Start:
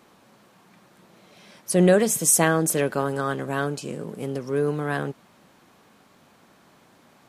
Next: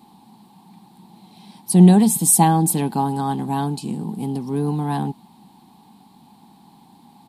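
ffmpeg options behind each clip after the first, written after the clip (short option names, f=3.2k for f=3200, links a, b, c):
-af "firequalizer=gain_entry='entry(110,0);entry(200,10);entry(570,-17);entry(820,12);entry(1300,-15);entry(4100,4);entry(6100,-10);entry(8600,2)':delay=0.05:min_phase=1,volume=2.5dB"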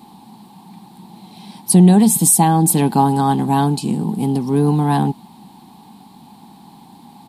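-af "alimiter=limit=-9dB:level=0:latency=1:release=471,volume=7dB"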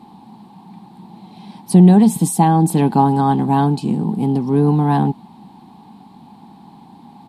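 -af "lowpass=f=2k:p=1,volume=1dB"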